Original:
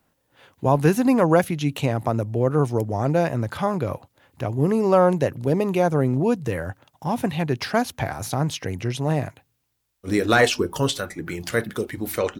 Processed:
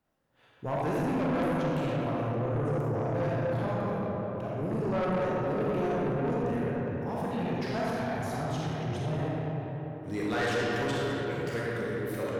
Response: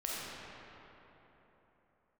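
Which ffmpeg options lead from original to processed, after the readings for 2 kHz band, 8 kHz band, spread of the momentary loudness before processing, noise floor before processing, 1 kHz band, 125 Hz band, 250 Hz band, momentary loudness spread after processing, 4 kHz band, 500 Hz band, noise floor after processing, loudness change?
-8.5 dB, under -10 dB, 11 LU, -71 dBFS, -8.0 dB, -7.5 dB, -8.0 dB, 5 LU, -11.0 dB, -8.0 dB, -45 dBFS, -8.5 dB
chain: -filter_complex "[0:a]highshelf=f=4.5k:g=-6.5[a];[1:a]atrim=start_sample=2205[b];[a][b]afir=irnorm=-1:irlink=0,asoftclip=type=tanh:threshold=-16dB,volume=-9dB"

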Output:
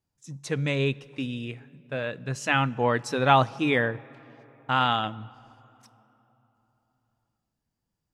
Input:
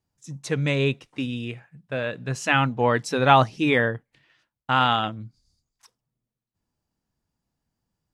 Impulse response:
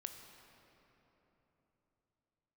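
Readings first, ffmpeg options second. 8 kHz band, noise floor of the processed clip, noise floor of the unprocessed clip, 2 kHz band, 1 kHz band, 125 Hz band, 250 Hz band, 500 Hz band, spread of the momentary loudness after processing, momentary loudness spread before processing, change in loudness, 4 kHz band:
-3.0 dB, -83 dBFS, -85 dBFS, -3.0 dB, -3.0 dB, -3.0 dB, -3.0 dB, -3.0 dB, 19 LU, 20 LU, -3.0 dB, -3.0 dB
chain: -filter_complex "[0:a]asplit=2[a][b];[1:a]atrim=start_sample=2205[c];[b][c]afir=irnorm=-1:irlink=0,volume=-10.5dB[d];[a][d]amix=inputs=2:normalize=0,volume=-4.5dB"

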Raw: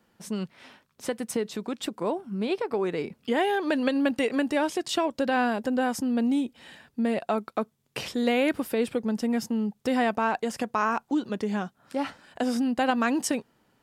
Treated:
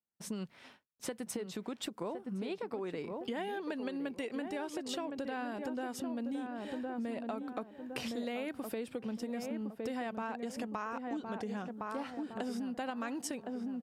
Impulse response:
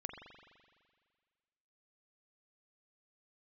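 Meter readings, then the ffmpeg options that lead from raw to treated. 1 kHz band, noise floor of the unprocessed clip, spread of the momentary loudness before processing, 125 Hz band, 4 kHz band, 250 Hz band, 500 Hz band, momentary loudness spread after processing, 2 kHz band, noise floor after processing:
-12.5 dB, -69 dBFS, 9 LU, -9.0 dB, -11.0 dB, -11.5 dB, -11.5 dB, 4 LU, -13.0 dB, -61 dBFS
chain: -filter_complex "[0:a]asplit=2[a][b];[b]adelay=1062,lowpass=f=1.2k:p=1,volume=-6.5dB,asplit=2[c][d];[d]adelay=1062,lowpass=f=1.2k:p=1,volume=0.38,asplit=2[e][f];[f]adelay=1062,lowpass=f=1.2k:p=1,volume=0.38,asplit=2[g][h];[h]adelay=1062,lowpass=f=1.2k:p=1,volume=0.38[i];[c][e][g][i]amix=inputs=4:normalize=0[j];[a][j]amix=inputs=2:normalize=0,agate=range=-33dB:threshold=-45dB:ratio=3:detection=peak,acompressor=threshold=-33dB:ratio=6,volume=-3dB"

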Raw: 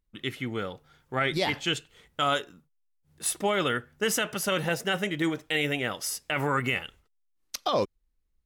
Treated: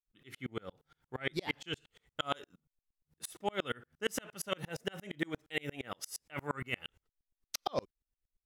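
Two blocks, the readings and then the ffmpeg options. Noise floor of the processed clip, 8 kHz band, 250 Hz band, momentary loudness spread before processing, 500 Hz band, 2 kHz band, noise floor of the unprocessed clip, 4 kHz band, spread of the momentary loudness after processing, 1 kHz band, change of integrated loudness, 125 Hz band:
under -85 dBFS, -12.5 dB, -11.0 dB, 9 LU, -10.5 dB, -11.5 dB, -73 dBFS, -11.0 dB, 10 LU, -11.0 dB, -11.0 dB, -11.0 dB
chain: -af "aeval=exprs='val(0)*pow(10,-36*if(lt(mod(-8.6*n/s,1),2*abs(-8.6)/1000),1-mod(-8.6*n/s,1)/(2*abs(-8.6)/1000),(mod(-8.6*n/s,1)-2*abs(-8.6)/1000)/(1-2*abs(-8.6)/1000))/20)':c=same,volume=-2dB"

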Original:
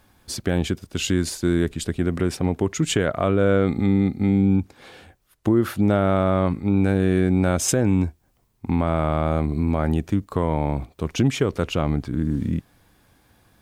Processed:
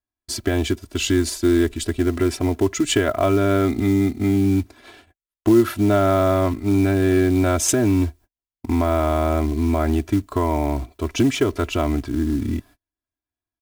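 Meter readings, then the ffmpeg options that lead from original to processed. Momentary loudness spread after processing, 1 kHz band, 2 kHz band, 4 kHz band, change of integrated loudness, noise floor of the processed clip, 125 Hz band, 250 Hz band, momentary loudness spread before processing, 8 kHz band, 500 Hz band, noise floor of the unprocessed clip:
7 LU, +3.0 dB, +2.0 dB, +3.0 dB, +2.0 dB, under -85 dBFS, -0.5 dB, +2.0 dB, 7 LU, +3.0 dB, +3.0 dB, -63 dBFS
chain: -af "aecho=1:1:3:0.93,acrusher=bits=6:mode=log:mix=0:aa=0.000001,agate=range=-38dB:threshold=-42dB:ratio=16:detection=peak"

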